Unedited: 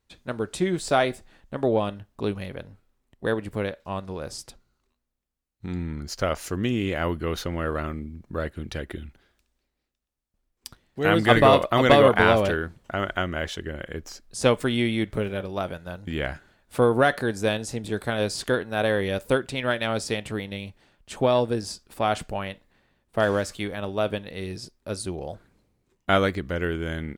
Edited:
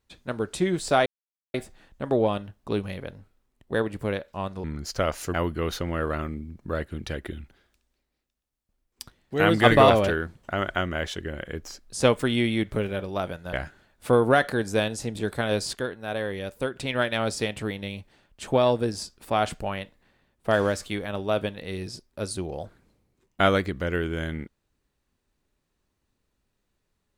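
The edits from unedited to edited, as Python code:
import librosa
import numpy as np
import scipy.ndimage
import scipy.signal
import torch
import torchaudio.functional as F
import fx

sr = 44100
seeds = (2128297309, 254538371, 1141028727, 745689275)

y = fx.edit(x, sr, fx.insert_silence(at_s=1.06, length_s=0.48),
    fx.cut(start_s=4.16, length_s=1.71),
    fx.cut(start_s=6.57, length_s=0.42),
    fx.cut(start_s=11.55, length_s=0.76),
    fx.cut(start_s=15.94, length_s=0.28),
    fx.clip_gain(start_s=18.42, length_s=1.03, db=-6.5), tone=tone)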